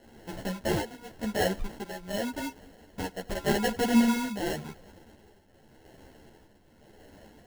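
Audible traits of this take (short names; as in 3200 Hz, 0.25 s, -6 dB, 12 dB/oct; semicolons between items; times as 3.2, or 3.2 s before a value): a quantiser's noise floor 10-bit, dither triangular; tremolo triangle 0.87 Hz, depth 75%; aliases and images of a low sample rate 1200 Hz, jitter 0%; a shimmering, thickened sound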